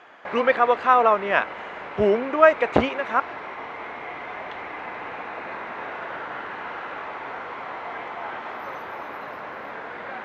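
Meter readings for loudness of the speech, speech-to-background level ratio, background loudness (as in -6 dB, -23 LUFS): -20.5 LUFS, 13.5 dB, -34.0 LUFS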